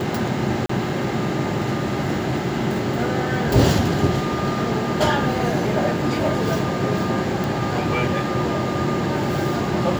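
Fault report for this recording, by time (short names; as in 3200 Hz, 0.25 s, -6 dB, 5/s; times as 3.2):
0.66–0.69 gap 34 ms
7.44 pop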